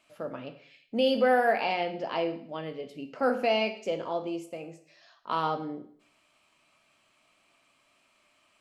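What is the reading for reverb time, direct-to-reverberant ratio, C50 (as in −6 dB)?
0.55 s, 6.5 dB, 12.0 dB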